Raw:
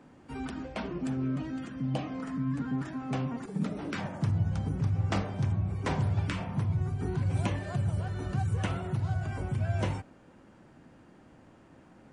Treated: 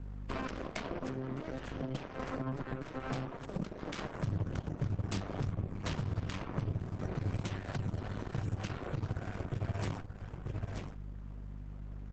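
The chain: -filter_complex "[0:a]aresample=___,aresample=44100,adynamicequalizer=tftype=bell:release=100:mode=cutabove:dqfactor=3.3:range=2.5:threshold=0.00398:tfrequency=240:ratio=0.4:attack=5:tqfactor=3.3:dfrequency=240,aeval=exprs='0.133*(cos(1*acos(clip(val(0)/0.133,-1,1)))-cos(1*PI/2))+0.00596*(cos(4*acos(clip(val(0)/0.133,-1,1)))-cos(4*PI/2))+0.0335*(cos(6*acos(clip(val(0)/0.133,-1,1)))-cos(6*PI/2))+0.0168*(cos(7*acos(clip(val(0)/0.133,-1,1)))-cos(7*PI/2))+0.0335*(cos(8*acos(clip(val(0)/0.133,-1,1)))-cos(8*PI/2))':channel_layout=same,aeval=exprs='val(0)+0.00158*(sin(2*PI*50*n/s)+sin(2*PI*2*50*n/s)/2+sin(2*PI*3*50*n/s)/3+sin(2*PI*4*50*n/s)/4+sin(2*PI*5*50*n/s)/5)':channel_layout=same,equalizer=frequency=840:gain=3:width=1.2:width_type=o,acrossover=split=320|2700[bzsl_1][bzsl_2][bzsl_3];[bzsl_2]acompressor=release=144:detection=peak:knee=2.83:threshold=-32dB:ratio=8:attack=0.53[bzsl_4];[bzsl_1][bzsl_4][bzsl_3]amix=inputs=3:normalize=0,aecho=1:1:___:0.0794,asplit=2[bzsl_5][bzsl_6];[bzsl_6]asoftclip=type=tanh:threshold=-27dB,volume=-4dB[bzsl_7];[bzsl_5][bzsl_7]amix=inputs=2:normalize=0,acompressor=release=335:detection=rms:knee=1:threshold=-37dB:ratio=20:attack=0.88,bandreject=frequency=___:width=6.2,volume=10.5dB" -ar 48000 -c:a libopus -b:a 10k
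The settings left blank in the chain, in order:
16000, 934, 840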